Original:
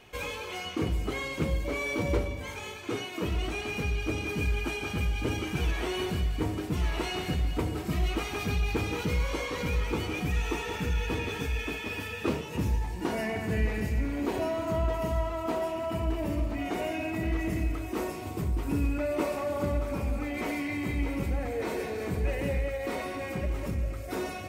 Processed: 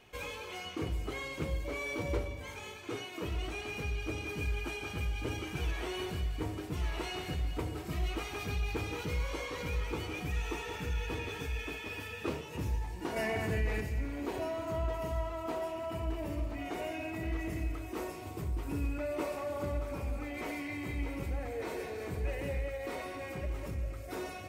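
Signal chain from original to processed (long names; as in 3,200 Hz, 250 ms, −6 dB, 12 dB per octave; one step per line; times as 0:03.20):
dynamic equaliser 210 Hz, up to −6 dB, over −48 dBFS, Q 2.2
0:13.16–0:13.81: envelope flattener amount 50%
level −5.5 dB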